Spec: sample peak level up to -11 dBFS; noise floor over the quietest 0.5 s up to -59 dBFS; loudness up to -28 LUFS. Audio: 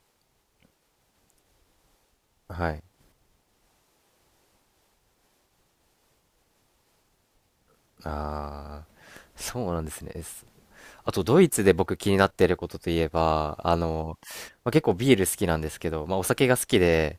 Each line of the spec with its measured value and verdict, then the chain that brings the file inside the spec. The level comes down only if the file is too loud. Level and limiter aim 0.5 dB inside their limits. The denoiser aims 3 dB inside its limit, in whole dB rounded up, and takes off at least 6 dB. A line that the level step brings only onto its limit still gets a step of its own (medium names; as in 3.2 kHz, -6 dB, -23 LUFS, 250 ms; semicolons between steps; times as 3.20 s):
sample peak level -5.0 dBFS: fail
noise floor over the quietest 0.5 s -70 dBFS: pass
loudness -25.0 LUFS: fail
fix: trim -3.5 dB; peak limiter -11.5 dBFS